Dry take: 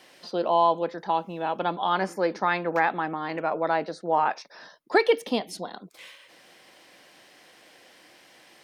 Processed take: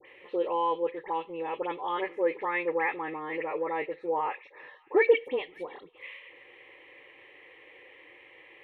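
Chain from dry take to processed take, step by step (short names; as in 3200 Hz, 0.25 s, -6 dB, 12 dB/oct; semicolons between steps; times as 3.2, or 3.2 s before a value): graphic EQ 250/500/1000/2000 Hz -6/+5/-6/+9 dB; in parallel at -1 dB: compressor, threshold -37 dBFS, peak gain reduction 22.5 dB; on the sum: air absorption 440 m; fixed phaser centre 1000 Hz, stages 8; dispersion highs, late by 72 ms, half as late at 2100 Hz; on a send: thin delay 0.563 s, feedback 36%, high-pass 1900 Hz, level -21.5 dB; on the sum: gain -1.5 dB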